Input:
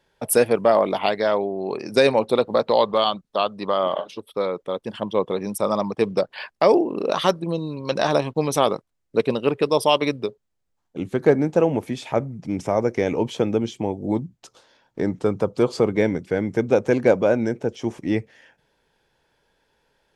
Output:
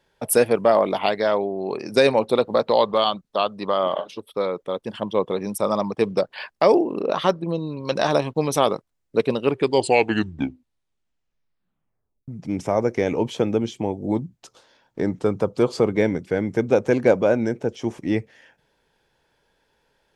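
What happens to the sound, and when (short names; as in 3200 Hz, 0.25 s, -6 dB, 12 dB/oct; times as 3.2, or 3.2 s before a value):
6.99–7.79 LPF 2200 Hz -> 4600 Hz 6 dB/oct
9.42 tape stop 2.86 s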